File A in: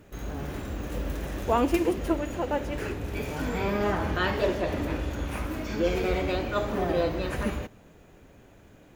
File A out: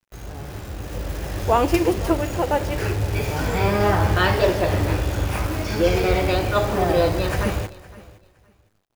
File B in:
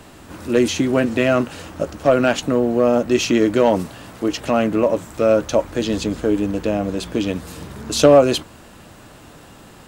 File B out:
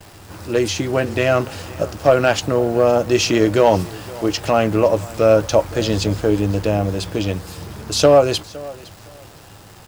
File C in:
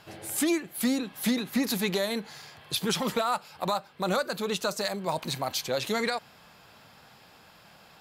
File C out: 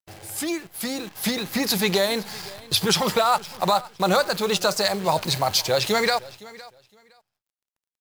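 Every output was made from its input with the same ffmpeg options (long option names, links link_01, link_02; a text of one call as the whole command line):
ffmpeg -i in.wav -filter_complex "[0:a]agate=range=-23dB:threshold=-50dB:ratio=16:detection=peak,equalizer=frequency=100:width_type=o:width=0.33:gain=11,equalizer=frequency=250:width_type=o:width=0.33:gain=-9,equalizer=frequency=800:width_type=o:width=0.33:gain=3,equalizer=frequency=5000:width_type=o:width=0.33:gain=6,acrusher=bits=8:dc=4:mix=0:aa=0.000001,dynaudnorm=framelen=220:gausssize=11:maxgain=8.5dB,asplit=2[link_01][link_02];[link_02]aecho=0:1:513|1026:0.0944|0.0189[link_03];[link_01][link_03]amix=inputs=2:normalize=0,volume=-1dB" out.wav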